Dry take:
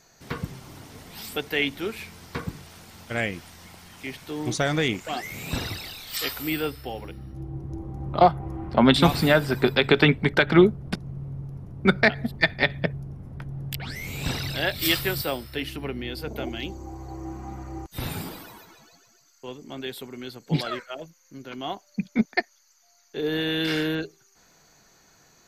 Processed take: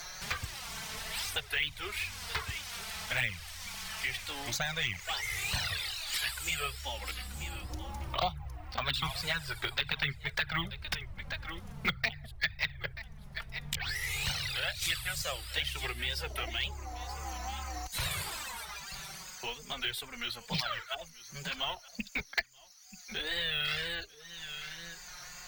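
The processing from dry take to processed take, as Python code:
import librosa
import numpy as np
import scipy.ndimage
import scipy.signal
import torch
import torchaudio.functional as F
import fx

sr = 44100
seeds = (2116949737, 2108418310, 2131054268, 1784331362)

p1 = fx.tone_stack(x, sr, knobs='10-0-10')
p2 = fx.wow_flutter(p1, sr, seeds[0], rate_hz=2.1, depth_cents=130.0)
p3 = p2 + fx.echo_single(p2, sr, ms=931, db=-22.0, dry=0)
p4 = fx.rider(p3, sr, range_db=4, speed_s=0.5)
p5 = fx.env_flanger(p4, sr, rest_ms=5.9, full_db=-23.0)
p6 = np.repeat(p5[::2], 2)[:len(p5)]
p7 = fx.high_shelf(p6, sr, hz=7100.0, db=-7.5)
p8 = fx.band_squash(p7, sr, depth_pct=70)
y = p8 * librosa.db_to_amplitude(4.5)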